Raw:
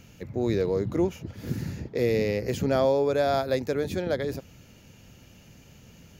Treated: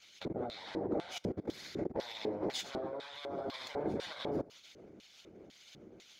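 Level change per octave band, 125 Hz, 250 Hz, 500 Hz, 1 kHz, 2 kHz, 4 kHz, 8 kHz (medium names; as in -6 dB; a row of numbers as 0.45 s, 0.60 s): -17.0 dB, -10.5 dB, -14.0 dB, -11.0 dB, -11.0 dB, -2.5 dB, -5.5 dB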